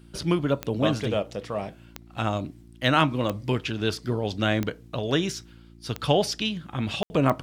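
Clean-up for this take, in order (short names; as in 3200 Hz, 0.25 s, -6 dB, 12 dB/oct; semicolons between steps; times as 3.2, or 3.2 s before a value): de-click; de-hum 57.2 Hz, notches 6; room tone fill 7.03–7.1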